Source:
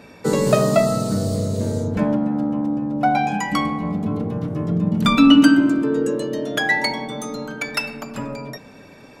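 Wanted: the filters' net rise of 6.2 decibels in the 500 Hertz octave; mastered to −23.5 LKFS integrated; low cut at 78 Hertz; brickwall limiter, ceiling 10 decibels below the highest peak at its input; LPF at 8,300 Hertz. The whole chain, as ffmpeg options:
ffmpeg -i in.wav -af "highpass=78,lowpass=8300,equalizer=frequency=500:width_type=o:gain=8,volume=-4dB,alimiter=limit=-12.5dB:level=0:latency=1" out.wav

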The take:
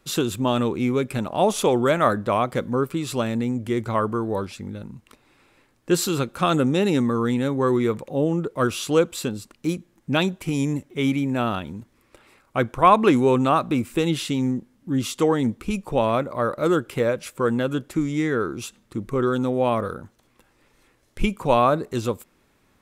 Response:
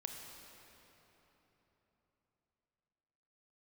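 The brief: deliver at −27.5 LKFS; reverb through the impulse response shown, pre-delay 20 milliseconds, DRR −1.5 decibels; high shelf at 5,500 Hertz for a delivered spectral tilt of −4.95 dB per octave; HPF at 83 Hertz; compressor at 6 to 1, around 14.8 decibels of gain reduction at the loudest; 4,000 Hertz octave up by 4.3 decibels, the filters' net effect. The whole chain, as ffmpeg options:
-filter_complex "[0:a]highpass=83,equalizer=frequency=4000:width_type=o:gain=4,highshelf=frequency=5500:gain=3.5,acompressor=threshold=-26dB:ratio=6,asplit=2[link_01][link_02];[1:a]atrim=start_sample=2205,adelay=20[link_03];[link_02][link_03]afir=irnorm=-1:irlink=0,volume=3.5dB[link_04];[link_01][link_04]amix=inputs=2:normalize=0,volume=-1dB"

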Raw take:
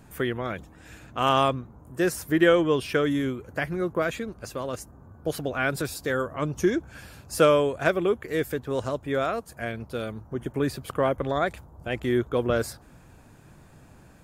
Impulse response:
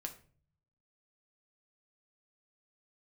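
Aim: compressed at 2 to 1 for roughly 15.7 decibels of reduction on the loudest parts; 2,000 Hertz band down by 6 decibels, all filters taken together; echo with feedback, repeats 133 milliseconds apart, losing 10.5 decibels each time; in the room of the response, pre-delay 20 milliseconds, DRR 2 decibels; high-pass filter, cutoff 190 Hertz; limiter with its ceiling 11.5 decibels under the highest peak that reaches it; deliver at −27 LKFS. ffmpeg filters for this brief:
-filter_complex "[0:a]highpass=190,equalizer=frequency=2000:width_type=o:gain=-8.5,acompressor=threshold=-45dB:ratio=2,alimiter=level_in=10.5dB:limit=-24dB:level=0:latency=1,volume=-10.5dB,aecho=1:1:133|266|399:0.299|0.0896|0.0269,asplit=2[link_01][link_02];[1:a]atrim=start_sample=2205,adelay=20[link_03];[link_02][link_03]afir=irnorm=-1:irlink=0,volume=0.5dB[link_04];[link_01][link_04]amix=inputs=2:normalize=0,volume=16dB"

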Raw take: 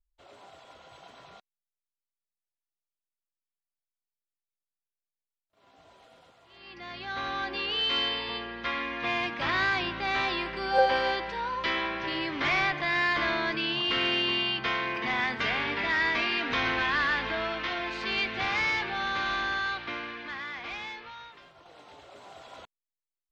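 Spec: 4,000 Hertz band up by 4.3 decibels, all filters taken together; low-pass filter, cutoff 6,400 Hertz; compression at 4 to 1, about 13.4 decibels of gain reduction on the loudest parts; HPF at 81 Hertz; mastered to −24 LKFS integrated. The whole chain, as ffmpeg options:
ffmpeg -i in.wav -af "highpass=81,lowpass=6400,equalizer=frequency=4000:width_type=o:gain=6.5,acompressor=threshold=-33dB:ratio=4,volume=9.5dB" out.wav

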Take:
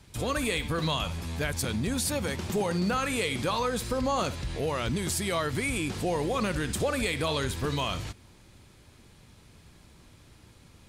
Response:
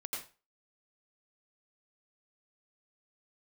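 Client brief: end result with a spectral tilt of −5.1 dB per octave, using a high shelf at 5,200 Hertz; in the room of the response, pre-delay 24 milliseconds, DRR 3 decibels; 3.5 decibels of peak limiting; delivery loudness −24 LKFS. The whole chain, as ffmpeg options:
-filter_complex "[0:a]highshelf=frequency=5200:gain=-8.5,alimiter=limit=-21.5dB:level=0:latency=1,asplit=2[link_01][link_02];[1:a]atrim=start_sample=2205,adelay=24[link_03];[link_02][link_03]afir=irnorm=-1:irlink=0,volume=-3.5dB[link_04];[link_01][link_04]amix=inputs=2:normalize=0,volume=6dB"

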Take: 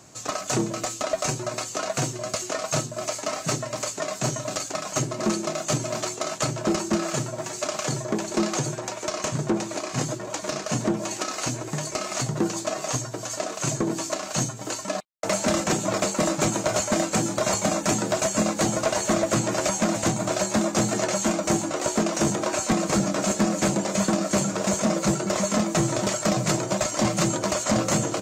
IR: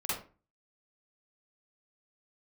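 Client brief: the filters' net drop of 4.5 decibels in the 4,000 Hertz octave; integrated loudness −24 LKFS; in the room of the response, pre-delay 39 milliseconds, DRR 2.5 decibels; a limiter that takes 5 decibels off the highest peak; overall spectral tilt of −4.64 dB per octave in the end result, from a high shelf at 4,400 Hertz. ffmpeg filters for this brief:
-filter_complex "[0:a]equalizer=frequency=4000:width_type=o:gain=-4,highshelf=frequency=4400:gain=-3,alimiter=limit=-17.5dB:level=0:latency=1,asplit=2[link_01][link_02];[1:a]atrim=start_sample=2205,adelay=39[link_03];[link_02][link_03]afir=irnorm=-1:irlink=0,volume=-8dB[link_04];[link_01][link_04]amix=inputs=2:normalize=0,volume=2dB"

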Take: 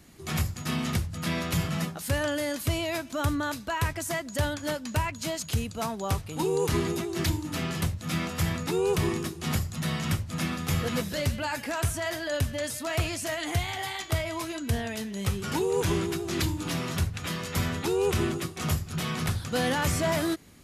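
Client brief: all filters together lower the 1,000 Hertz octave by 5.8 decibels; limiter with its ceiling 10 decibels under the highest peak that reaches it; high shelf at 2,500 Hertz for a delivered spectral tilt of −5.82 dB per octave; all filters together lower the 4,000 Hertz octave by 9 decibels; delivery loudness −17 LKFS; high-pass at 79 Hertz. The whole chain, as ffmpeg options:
ffmpeg -i in.wav -af "highpass=79,equalizer=frequency=1000:width_type=o:gain=-6,highshelf=frequency=2500:gain=-6.5,equalizer=frequency=4000:width_type=o:gain=-6,volume=18.5dB,alimiter=limit=-8dB:level=0:latency=1" out.wav

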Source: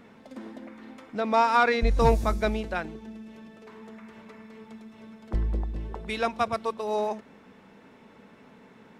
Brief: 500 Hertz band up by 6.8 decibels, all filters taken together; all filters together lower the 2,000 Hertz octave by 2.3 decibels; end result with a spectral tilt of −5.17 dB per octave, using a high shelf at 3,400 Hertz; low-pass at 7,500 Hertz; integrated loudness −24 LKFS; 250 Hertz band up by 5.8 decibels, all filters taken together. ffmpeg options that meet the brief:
ffmpeg -i in.wav -af "lowpass=7500,equalizer=frequency=250:width_type=o:gain=5.5,equalizer=frequency=500:width_type=o:gain=7,equalizer=frequency=2000:width_type=o:gain=-6,highshelf=frequency=3400:gain=6,volume=-1dB" out.wav

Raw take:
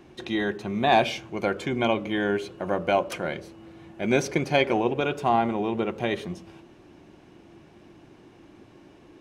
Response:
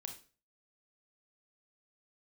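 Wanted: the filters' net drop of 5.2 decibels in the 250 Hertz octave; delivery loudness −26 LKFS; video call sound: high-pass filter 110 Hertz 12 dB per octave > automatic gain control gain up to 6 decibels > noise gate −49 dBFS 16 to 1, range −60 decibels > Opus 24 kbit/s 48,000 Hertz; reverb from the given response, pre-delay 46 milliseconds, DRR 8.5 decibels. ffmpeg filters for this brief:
-filter_complex "[0:a]equalizer=frequency=250:width_type=o:gain=-7,asplit=2[link_01][link_02];[1:a]atrim=start_sample=2205,adelay=46[link_03];[link_02][link_03]afir=irnorm=-1:irlink=0,volume=-4.5dB[link_04];[link_01][link_04]amix=inputs=2:normalize=0,highpass=110,dynaudnorm=maxgain=6dB,agate=range=-60dB:threshold=-49dB:ratio=16,volume=1dB" -ar 48000 -c:a libopus -b:a 24k

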